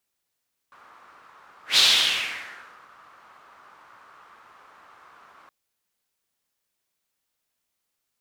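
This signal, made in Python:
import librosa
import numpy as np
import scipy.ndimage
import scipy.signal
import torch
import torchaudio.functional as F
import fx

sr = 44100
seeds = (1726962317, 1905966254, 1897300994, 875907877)

y = fx.whoosh(sr, seeds[0], length_s=4.77, peak_s=1.05, rise_s=0.13, fall_s=1.16, ends_hz=1200.0, peak_hz=3800.0, q=3.3, swell_db=35.0)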